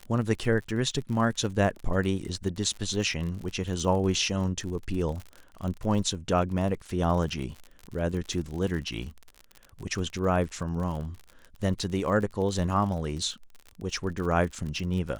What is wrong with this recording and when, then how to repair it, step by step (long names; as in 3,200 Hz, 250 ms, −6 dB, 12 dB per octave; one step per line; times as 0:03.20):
surface crackle 50 per second −34 dBFS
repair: click removal